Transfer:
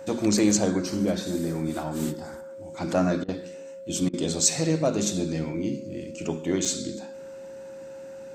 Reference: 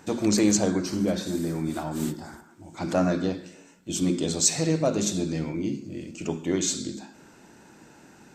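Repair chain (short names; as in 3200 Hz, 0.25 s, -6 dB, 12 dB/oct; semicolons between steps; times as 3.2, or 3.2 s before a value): notch 540 Hz, Q 30; interpolate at 6.65, 5 ms; interpolate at 3.24/4.09, 43 ms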